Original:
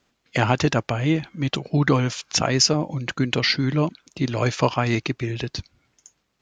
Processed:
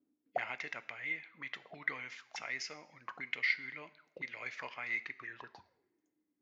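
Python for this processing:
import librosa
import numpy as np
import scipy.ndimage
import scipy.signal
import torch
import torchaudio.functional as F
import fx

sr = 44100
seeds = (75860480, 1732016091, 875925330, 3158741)

y = fx.dynamic_eq(x, sr, hz=2200.0, q=1.0, threshold_db=-38.0, ratio=4.0, max_db=-7)
y = fx.auto_wah(y, sr, base_hz=290.0, top_hz=2100.0, q=14.0, full_db=-21.0, direction='up')
y = fx.rev_double_slope(y, sr, seeds[0], early_s=0.66, late_s=2.2, knee_db=-28, drr_db=13.0)
y = y * 10.0 ** (6.0 / 20.0)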